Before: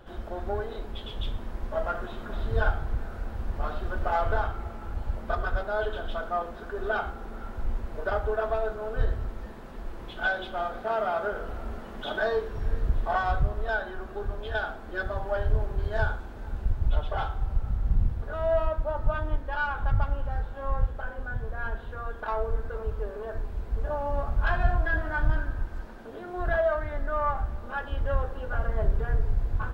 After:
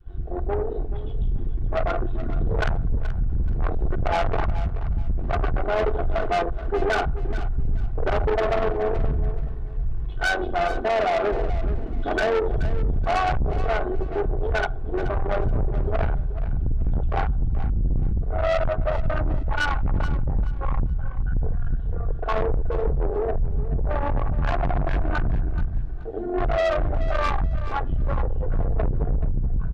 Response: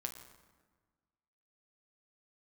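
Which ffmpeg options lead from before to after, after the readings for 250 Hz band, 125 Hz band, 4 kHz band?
+9.0 dB, +6.5 dB, +5.5 dB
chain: -filter_complex "[0:a]lowpass=f=1.5k:p=1,afwtdn=0.0282,equalizer=f=810:t=o:w=1.7:g=-4.5,aecho=1:1:2.7:0.58,adynamicequalizer=threshold=0.01:dfrequency=620:dqfactor=1.1:tfrequency=620:tqfactor=1.1:attack=5:release=100:ratio=0.375:range=2:mode=boostabove:tftype=bell,dynaudnorm=f=560:g=5:m=7dB,asplit=2[a][b];[b]alimiter=limit=-15dB:level=0:latency=1:release=112,volume=-1.5dB[c];[a][c]amix=inputs=2:normalize=0,acontrast=86,asoftclip=type=tanh:threshold=-14dB,tremolo=f=92:d=0.462,asplit=2[d][e];[e]aecho=0:1:428|856|1284:0.211|0.0507|0.0122[f];[d][f]amix=inputs=2:normalize=0,volume=-3dB"

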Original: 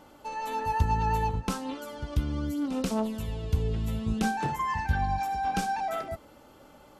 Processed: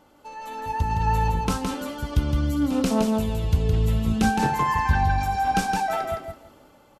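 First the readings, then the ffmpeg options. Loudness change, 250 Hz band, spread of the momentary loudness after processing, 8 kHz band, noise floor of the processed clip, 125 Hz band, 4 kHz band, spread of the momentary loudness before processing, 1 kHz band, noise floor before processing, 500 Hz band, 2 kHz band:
+6.5 dB, +7.0 dB, 10 LU, +6.5 dB, -56 dBFS, +6.5 dB, +6.5 dB, 8 LU, +5.0 dB, -54 dBFS, +6.0 dB, +6.5 dB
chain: -af "dynaudnorm=f=280:g=7:m=9.5dB,aecho=1:1:165|330|495:0.596|0.107|0.0193,volume=-3.5dB"

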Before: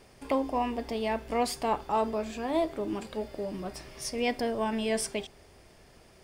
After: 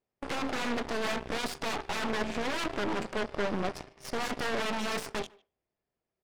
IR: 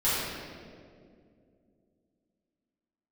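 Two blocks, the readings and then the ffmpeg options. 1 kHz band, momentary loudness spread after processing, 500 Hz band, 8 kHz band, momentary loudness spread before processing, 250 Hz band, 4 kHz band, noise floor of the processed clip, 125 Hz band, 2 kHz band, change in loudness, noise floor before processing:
-3.5 dB, 6 LU, -4.0 dB, -3.0 dB, 8 LU, -3.0 dB, +3.0 dB, under -85 dBFS, +1.5 dB, +5.5 dB, -2.0 dB, -57 dBFS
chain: -filter_complex "[0:a]acontrast=79,aresample=22050,aresample=44100,aeval=exprs='0.0562*(abs(mod(val(0)/0.0562+3,4)-2)-1)':c=same,aemphasis=mode=reproduction:type=75kf,agate=range=-27dB:threshold=-39dB:ratio=16:detection=peak,asplit=2[a][b];[1:a]atrim=start_sample=2205,atrim=end_sample=6174[c];[b][c]afir=irnorm=-1:irlink=0,volume=-33dB[d];[a][d]amix=inputs=2:normalize=0,aeval=exprs='0.0668*(cos(1*acos(clip(val(0)/0.0668,-1,1)))-cos(1*PI/2))+0.0106*(cos(6*acos(clip(val(0)/0.0668,-1,1)))-cos(6*PI/2))':c=same,lowshelf=f=69:g=-10.5,asplit=2[e][f];[f]adelay=150,highpass=300,lowpass=3.4k,asoftclip=type=hard:threshold=-31.5dB,volume=-14dB[g];[e][g]amix=inputs=2:normalize=0,aeval=exprs='0.0708*(cos(1*acos(clip(val(0)/0.0708,-1,1)))-cos(1*PI/2))+0.0224*(cos(2*acos(clip(val(0)/0.0708,-1,1)))-cos(2*PI/2))+0.0141*(cos(3*acos(clip(val(0)/0.0708,-1,1)))-cos(3*PI/2))+0.001*(cos(7*acos(clip(val(0)/0.0708,-1,1)))-cos(7*PI/2))':c=same"

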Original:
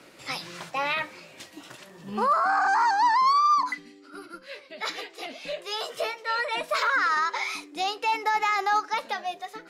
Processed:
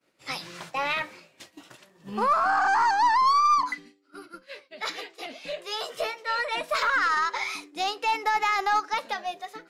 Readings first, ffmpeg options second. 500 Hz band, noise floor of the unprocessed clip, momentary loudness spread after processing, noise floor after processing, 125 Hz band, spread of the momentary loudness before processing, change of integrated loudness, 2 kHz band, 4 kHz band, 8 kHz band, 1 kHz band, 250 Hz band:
-0.5 dB, -51 dBFS, 16 LU, -63 dBFS, n/a, 21 LU, 0.0 dB, 0.0 dB, 0.0 dB, +0.5 dB, 0.0 dB, -0.5 dB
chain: -af "aeval=exprs='0.2*(cos(1*acos(clip(val(0)/0.2,-1,1)))-cos(1*PI/2))+0.0141*(cos(2*acos(clip(val(0)/0.2,-1,1)))-cos(2*PI/2))+0.00316*(cos(7*acos(clip(val(0)/0.2,-1,1)))-cos(7*PI/2))':c=same,agate=range=-33dB:threshold=-41dB:ratio=3:detection=peak"

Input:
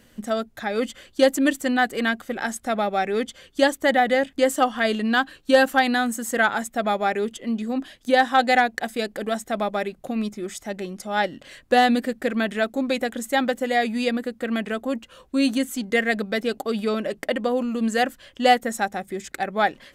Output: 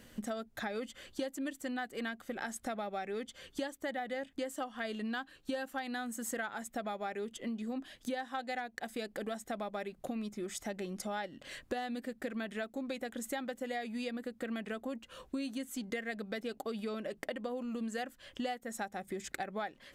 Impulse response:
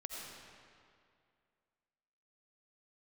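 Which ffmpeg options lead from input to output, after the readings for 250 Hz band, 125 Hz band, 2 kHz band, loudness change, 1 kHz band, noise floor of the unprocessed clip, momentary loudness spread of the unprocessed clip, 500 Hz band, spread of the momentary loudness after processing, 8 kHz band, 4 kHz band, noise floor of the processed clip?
-15.0 dB, n/a, -17.5 dB, -16.5 dB, -18.5 dB, -56 dBFS, 10 LU, -16.5 dB, 3 LU, -11.5 dB, -17.0 dB, -64 dBFS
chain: -af "acompressor=threshold=-34dB:ratio=8,volume=-2dB"

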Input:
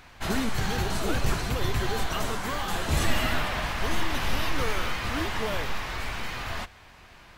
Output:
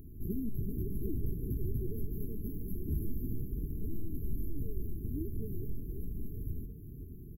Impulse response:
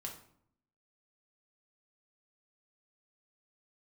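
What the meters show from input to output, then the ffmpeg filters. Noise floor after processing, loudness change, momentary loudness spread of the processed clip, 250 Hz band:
-47 dBFS, -10.5 dB, 5 LU, -6.0 dB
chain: -filter_complex "[0:a]acompressor=threshold=-44dB:ratio=2.5,equalizer=f=460:w=5.5:g=-10.5,asplit=7[a][b][c][d][e][f][g];[b]adelay=386,afreqshift=43,volume=-11dB[h];[c]adelay=772,afreqshift=86,volume=-16.2dB[i];[d]adelay=1158,afreqshift=129,volume=-21.4dB[j];[e]adelay=1544,afreqshift=172,volume=-26.6dB[k];[f]adelay=1930,afreqshift=215,volume=-31.8dB[l];[g]adelay=2316,afreqshift=258,volume=-37dB[m];[a][h][i][j][k][l][m]amix=inputs=7:normalize=0,afftfilt=real='re*(1-between(b*sr/4096,470,11000))':imag='im*(1-between(b*sr/4096,470,11000))':win_size=4096:overlap=0.75,volume=7dB"

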